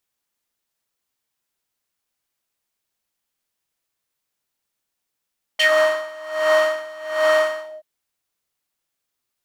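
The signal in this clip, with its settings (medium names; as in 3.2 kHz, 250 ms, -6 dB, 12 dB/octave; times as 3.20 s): synth patch with tremolo D#5, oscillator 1 square, oscillator 2 level -15.5 dB, sub -18.5 dB, noise -2.5 dB, filter bandpass, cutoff 570 Hz, Q 3.4, filter envelope 2.5 oct, filter decay 0.12 s, attack 12 ms, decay 0.08 s, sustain -8 dB, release 0.23 s, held 2.00 s, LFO 1.3 Hz, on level 21 dB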